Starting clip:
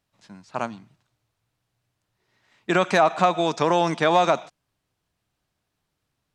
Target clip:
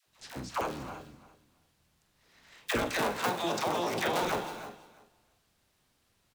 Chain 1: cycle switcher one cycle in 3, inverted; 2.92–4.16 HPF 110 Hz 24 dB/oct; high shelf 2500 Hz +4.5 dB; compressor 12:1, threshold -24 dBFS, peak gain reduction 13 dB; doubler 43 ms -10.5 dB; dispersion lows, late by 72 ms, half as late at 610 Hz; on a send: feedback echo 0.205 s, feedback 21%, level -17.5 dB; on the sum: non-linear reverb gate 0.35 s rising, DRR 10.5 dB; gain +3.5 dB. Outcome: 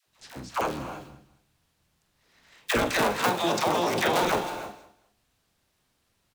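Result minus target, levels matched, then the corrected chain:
echo 0.132 s early; compressor: peak gain reduction -6 dB
cycle switcher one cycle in 3, inverted; 2.92–4.16 HPF 110 Hz 24 dB/oct; high shelf 2500 Hz +4.5 dB; compressor 12:1, threshold -30.5 dBFS, peak gain reduction 19 dB; doubler 43 ms -10.5 dB; dispersion lows, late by 72 ms, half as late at 610 Hz; on a send: feedback echo 0.337 s, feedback 21%, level -17.5 dB; on the sum: non-linear reverb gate 0.35 s rising, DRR 10.5 dB; gain +3.5 dB

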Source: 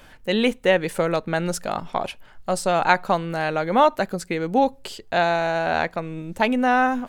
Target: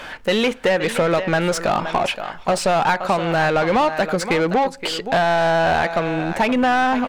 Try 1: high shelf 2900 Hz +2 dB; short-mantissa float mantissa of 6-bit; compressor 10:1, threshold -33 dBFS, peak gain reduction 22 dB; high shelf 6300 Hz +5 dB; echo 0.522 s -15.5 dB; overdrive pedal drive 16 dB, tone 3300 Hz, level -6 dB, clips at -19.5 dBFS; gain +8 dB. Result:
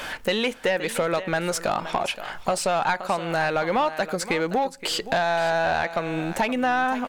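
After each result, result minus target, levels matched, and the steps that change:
compressor: peak gain reduction +10 dB; 8000 Hz band +4.5 dB
change: compressor 10:1, threshold -22 dBFS, peak gain reduction 12 dB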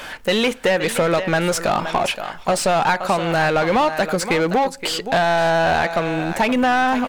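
8000 Hz band +3.5 dB
change: second high shelf 6300 Hz -6.5 dB

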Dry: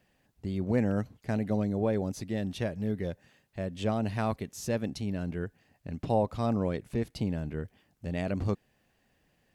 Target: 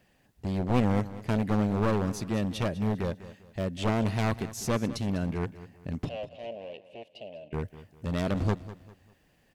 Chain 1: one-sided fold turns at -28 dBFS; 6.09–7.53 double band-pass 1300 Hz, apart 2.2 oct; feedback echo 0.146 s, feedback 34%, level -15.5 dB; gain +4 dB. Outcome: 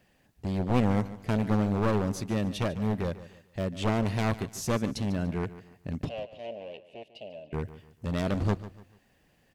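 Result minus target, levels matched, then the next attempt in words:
echo 53 ms early
one-sided fold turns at -28 dBFS; 6.09–7.53 double band-pass 1300 Hz, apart 2.2 oct; feedback echo 0.199 s, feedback 34%, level -15.5 dB; gain +4 dB

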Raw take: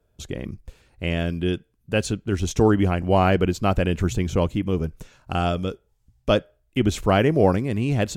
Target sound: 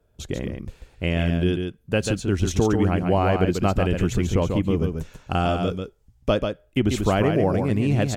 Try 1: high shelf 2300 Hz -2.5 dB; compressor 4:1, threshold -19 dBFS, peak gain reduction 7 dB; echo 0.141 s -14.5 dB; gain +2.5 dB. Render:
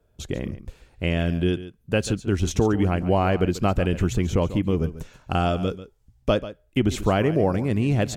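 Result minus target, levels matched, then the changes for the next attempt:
echo-to-direct -9 dB
change: echo 0.141 s -5.5 dB

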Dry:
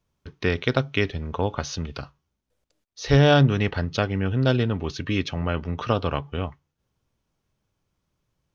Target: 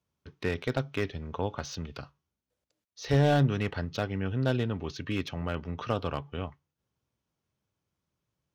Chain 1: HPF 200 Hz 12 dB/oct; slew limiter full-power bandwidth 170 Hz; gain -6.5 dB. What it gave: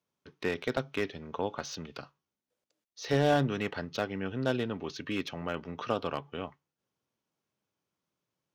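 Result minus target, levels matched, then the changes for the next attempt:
125 Hz band -5.5 dB
change: HPF 69 Hz 12 dB/oct

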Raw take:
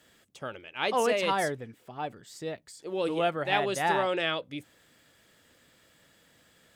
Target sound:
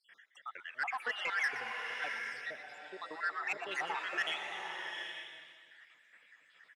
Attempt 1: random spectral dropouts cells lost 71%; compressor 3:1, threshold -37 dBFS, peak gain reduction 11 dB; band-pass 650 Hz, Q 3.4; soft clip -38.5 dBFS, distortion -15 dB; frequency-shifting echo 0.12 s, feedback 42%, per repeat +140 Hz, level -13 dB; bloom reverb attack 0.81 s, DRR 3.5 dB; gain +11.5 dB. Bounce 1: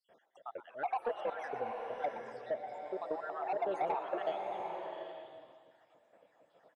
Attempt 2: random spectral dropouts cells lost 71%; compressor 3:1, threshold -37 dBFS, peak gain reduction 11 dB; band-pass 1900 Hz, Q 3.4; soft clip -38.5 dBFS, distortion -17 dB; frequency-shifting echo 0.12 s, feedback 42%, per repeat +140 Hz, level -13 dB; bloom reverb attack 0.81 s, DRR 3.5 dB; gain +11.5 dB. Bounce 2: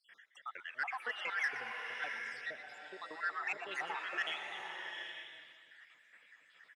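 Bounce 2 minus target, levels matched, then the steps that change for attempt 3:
compressor: peak gain reduction +4 dB
change: compressor 3:1, threshold -31 dBFS, peak gain reduction 7 dB

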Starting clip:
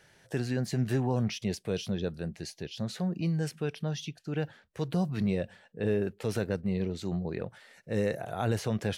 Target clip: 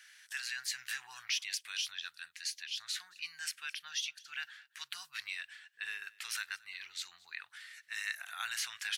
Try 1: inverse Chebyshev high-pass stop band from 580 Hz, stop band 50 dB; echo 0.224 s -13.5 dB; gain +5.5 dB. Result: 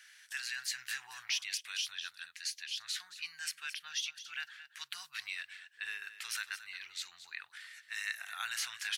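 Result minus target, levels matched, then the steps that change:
echo-to-direct +10.5 dB
change: echo 0.224 s -24 dB

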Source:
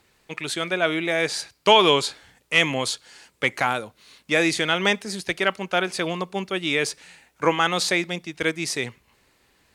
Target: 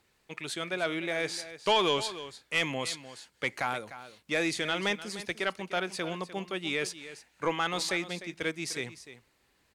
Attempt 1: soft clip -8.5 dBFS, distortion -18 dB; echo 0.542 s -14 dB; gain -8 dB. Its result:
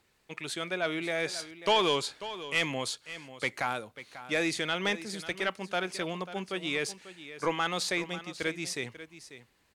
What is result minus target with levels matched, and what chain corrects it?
echo 0.241 s late
soft clip -8.5 dBFS, distortion -18 dB; echo 0.301 s -14 dB; gain -8 dB

